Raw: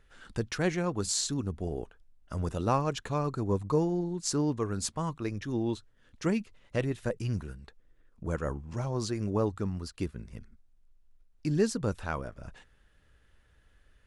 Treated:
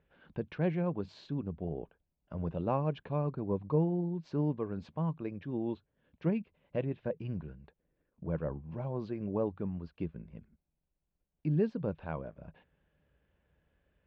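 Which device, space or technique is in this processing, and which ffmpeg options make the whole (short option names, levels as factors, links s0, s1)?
bass cabinet: -af "highpass=68,equalizer=f=110:t=q:w=4:g=-6,equalizer=f=160:t=q:w=4:g=8,equalizer=f=570:t=q:w=4:g=4,equalizer=f=1300:t=q:w=4:g=-9,equalizer=f=1900:t=q:w=4:g=-8,lowpass=f=2400:w=0.5412,lowpass=f=2400:w=1.3066,equalizer=f=4100:w=1.4:g=4.5,volume=0.596"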